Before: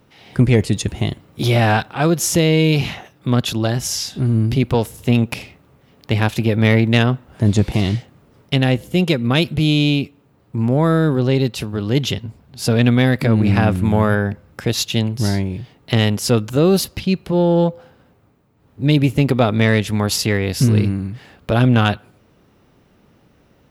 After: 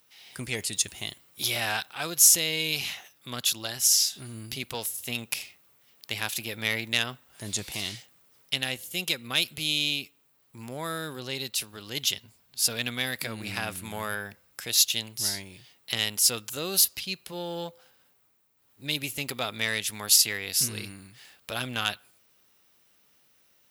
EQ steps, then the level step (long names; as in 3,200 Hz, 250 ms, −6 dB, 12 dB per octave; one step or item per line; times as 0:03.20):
first-order pre-emphasis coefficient 0.97
+3.5 dB